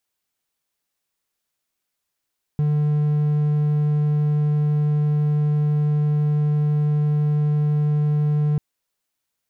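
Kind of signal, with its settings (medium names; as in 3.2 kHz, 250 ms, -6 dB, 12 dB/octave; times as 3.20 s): tone triangle 149 Hz -14.5 dBFS 5.99 s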